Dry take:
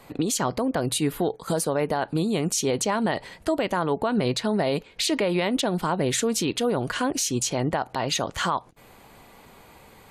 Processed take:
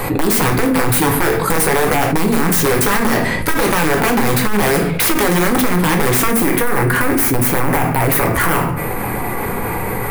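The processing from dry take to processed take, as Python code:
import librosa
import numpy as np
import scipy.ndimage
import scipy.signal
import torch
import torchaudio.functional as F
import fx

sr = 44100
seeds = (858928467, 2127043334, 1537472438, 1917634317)

y = fx.high_shelf(x, sr, hz=2500.0, db=4.0)
y = (np.mod(10.0 ** (17.5 / 20.0) * y + 1.0, 2.0) - 1.0) / 10.0 ** (17.5 / 20.0)
y = fx.notch(y, sr, hz=630.0, q=12.0)
y = fx.room_shoebox(y, sr, seeds[0], volume_m3=36.0, walls='mixed', distance_m=0.45)
y = 10.0 ** (-18.0 / 20.0) * np.tanh(y / 10.0 ** (-18.0 / 20.0))
y = fx.band_shelf(y, sr, hz=4600.0, db=fx.steps((0.0, -8.0), (6.3, -15.5)), octaves=1.7)
y = fx.env_flatten(y, sr, amount_pct=70)
y = y * librosa.db_to_amplitude(7.5)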